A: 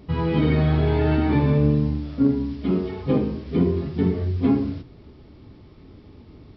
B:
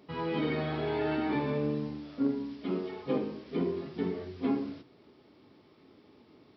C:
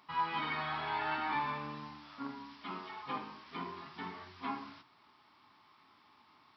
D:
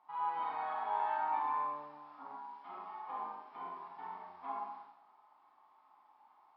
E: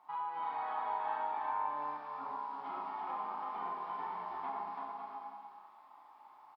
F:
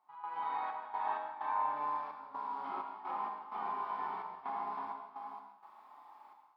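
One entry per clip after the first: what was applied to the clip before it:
Bessel high-pass filter 340 Hz, order 2; level −5.5 dB
low shelf with overshoot 690 Hz −12.5 dB, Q 3
resonant band-pass 800 Hz, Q 3.7; four-comb reverb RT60 0.9 s, combs from 30 ms, DRR −2.5 dB; level +1.5 dB
downward compressor 5 to 1, threshold −42 dBFS, peak gain reduction 10.5 dB; bouncing-ball delay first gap 330 ms, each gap 0.65×, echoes 5; level +5 dB
gate pattern ".xx.x.xxx" 64 BPM −12 dB; reverb whose tail is shaped and stops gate 200 ms flat, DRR 3.5 dB

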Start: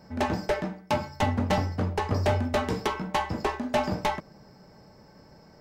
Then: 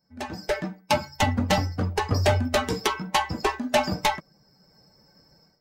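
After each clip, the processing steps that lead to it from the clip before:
spectral dynamics exaggerated over time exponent 1.5
high-shelf EQ 2,300 Hz +9 dB
automatic gain control gain up to 16 dB
level −7.5 dB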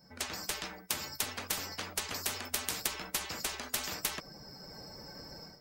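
every bin compressed towards the loudest bin 10 to 1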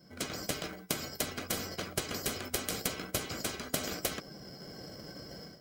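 in parallel at −2.5 dB: decimation without filtering 36×
on the sum: notch comb filter 900 Hz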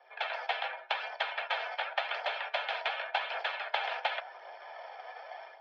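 phase shifter 0.89 Hz, delay 4 ms, feedback 32%
on a send at −15 dB: convolution reverb RT60 0.90 s, pre-delay 3 ms
on the sum: single-sideband voice off tune +190 Hz 460–3,200 Hz
level +6.5 dB

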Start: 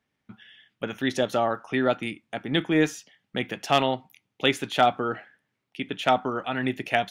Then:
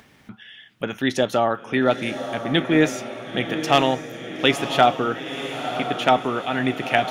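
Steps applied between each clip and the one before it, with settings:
feedback delay with all-pass diffusion 973 ms, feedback 52%, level −9 dB
upward compression, threshold −40 dBFS
level +4 dB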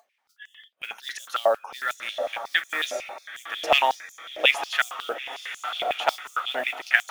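noise reduction from a noise print of the clip's start 18 dB
noise that follows the level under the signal 26 dB
high-pass on a step sequencer 11 Hz 600–6,800 Hz
level −5.5 dB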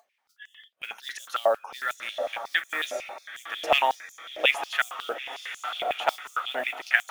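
dynamic equaliser 4,900 Hz, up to −5 dB, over −38 dBFS, Q 1.3
level −1.5 dB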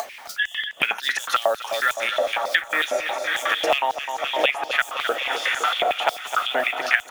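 repeating echo 257 ms, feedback 59%, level −14 dB
multiband upward and downward compressor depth 100%
level +6 dB

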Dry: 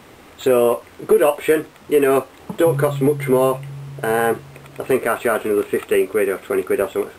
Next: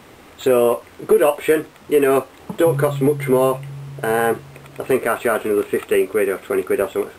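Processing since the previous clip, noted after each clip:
no processing that can be heard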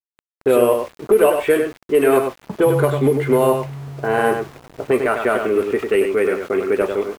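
slap from a distant wall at 17 metres, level −6 dB
low-pass that shuts in the quiet parts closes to 660 Hz, open at −10.5 dBFS
centre clipping without the shift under −36.5 dBFS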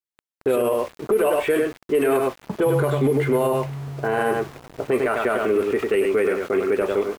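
brickwall limiter −12 dBFS, peak gain reduction 9.5 dB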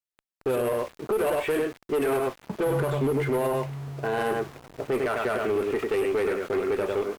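asymmetric clip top −19 dBFS, bottom −15 dBFS
level −4 dB

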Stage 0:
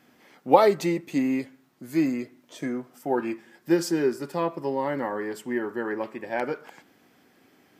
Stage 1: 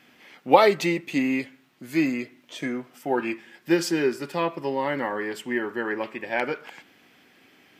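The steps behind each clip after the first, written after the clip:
parametric band 2,700 Hz +10 dB 1.4 octaves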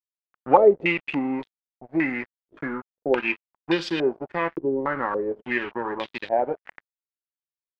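in parallel at +0.5 dB: downward compressor 6 to 1, threshold −30 dBFS, peak gain reduction 19.5 dB
on the sum: dead-zone distortion −32.5 dBFS
low-pass on a step sequencer 3.5 Hz 360–3,600 Hz
level −3.5 dB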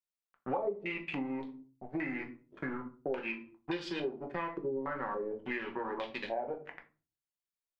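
rectangular room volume 170 cubic metres, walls furnished, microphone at 1.1 metres
downward compressor 4 to 1, threshold −30 dBFS, peak gain reduction 20 dB
level −4.5 dB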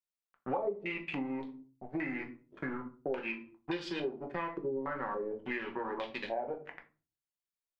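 no processing that can be heard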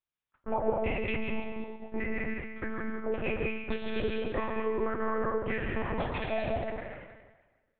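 dense smooth reverb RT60 1.3 s, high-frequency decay 0.95×, pre-delay 120 ms, DRR −0.5 dB
one-pitch LPC vocoder at 8 kHz 220 Hz
level +3 dB

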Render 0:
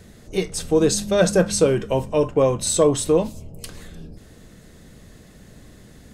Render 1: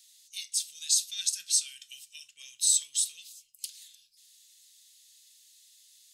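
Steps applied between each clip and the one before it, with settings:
inverse Chebyshev high-pass filter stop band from 1,000 Hz, stop band 60 dB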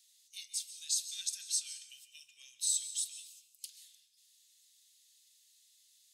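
dense smooth reverb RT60 0.67 s, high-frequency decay 0.95×, pre-delay 120 ms, DRR 11 dB
level −8 dB

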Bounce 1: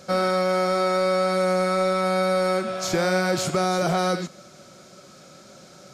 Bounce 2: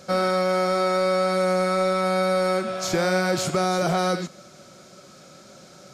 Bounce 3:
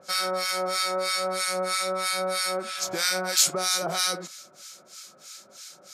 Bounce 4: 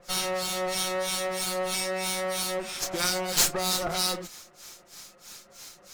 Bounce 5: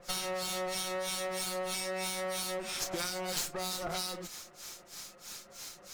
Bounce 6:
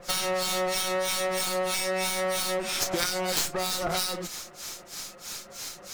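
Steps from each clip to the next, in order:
no processing that can be heard
spectral tilt +4.5 dB per octave; two-band tremolo in antiphase 3.1 Hz, depth 100%, crossover 1,200 Hz
lower of the sound and its delayed copy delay 5.7 ms
downward compressor 10 to 1, threshold −32 dBFS, peak gain reduction 15 dB
stylus tracing distortion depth 0.044 ms; in parallel at −9 dB: bit reduction 4 bits; on the sum: level +8 dB

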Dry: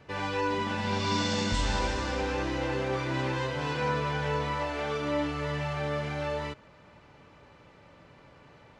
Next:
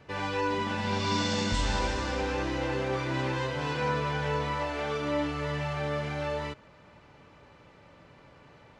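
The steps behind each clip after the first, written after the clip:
no processing that can be heard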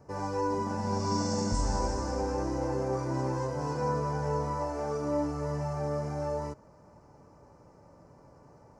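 drawn EQ curve 930 Hz 0 dB, 3,500 Hz −27 dB, 5,300 Hz +1 dB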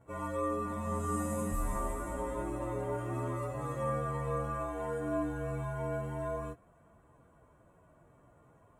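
partials spread apart or drawn together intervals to 113%
level −3 dB

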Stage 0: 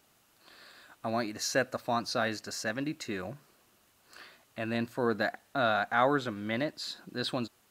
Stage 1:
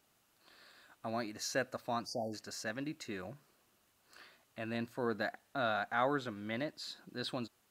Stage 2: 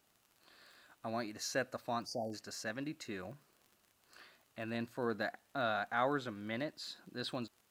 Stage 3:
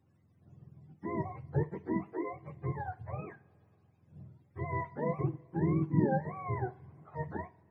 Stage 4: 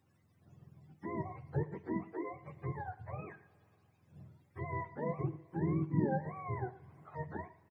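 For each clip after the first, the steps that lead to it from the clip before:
time-frequency box erased 0:02.06–0:02.34, 920–4,500 Hz; level −6.5 dB
surface crackle 26 per second −49 dBFS; level −1 dB
frequency axis turned over on the octave scale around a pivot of 480 Hz; coupled-rooms reverb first 0.3 s, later 3 s, from −22 dB, DRR 12.5 dB; level +4.5 dB
single-tap delay 112 ms −19 dB; one half of a high-frequency compander encoder only; level −4 dB

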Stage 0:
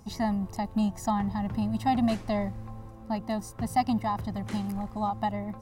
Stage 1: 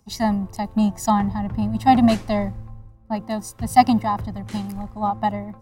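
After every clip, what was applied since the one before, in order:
multiband upward and downward expander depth 100%
level +7 dB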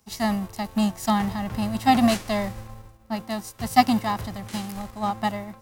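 spectral envelope flattened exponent 0.6
level −3.5 dB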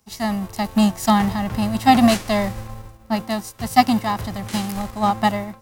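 automatic gain control gain up to 7.5 dB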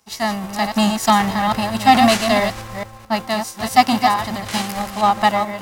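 delay that plays each chunk backwards 218 ms, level −6.5 dB
mid-hump overdrive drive 11 dB, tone 6,700 Hz, clips at −1 dBFS

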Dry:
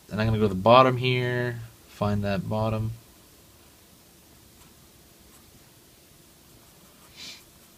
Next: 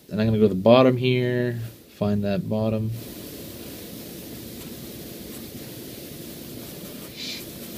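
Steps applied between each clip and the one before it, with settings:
octave-band graphic EQ 125/250/500/1,000/2,000/4,000/8,000 Hz +6/+11/+11/−5/+4/+5/−4 dB
reversed playback
upward compression, threshold −18 dBFS
reversed playback
high-shelf EQ 7,900 Hz +11.5 dB
level −6.5 dB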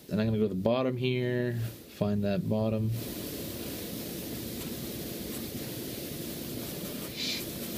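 downward compressor 5 to 1, threshold −25 dBFS, peak gain reduction 14.5 dB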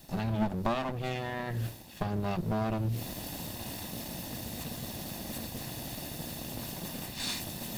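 lower of the sound and its delayed copy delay 1.1 ms

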